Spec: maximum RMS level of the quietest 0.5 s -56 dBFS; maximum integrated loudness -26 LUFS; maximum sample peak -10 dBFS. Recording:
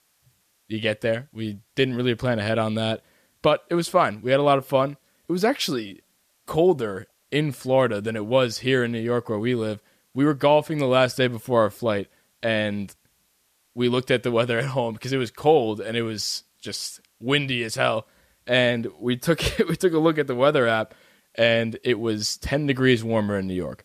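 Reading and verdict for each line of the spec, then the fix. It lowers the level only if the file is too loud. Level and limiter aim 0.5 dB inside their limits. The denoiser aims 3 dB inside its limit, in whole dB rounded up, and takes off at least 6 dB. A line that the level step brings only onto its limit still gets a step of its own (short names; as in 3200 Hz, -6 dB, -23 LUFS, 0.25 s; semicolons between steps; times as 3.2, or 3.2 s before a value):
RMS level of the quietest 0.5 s -67 dBFS: OK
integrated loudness -23.0 LUFS: fail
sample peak -5.5 dBFS: fail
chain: gain -3.5 dB; limiter -10.5 dBFS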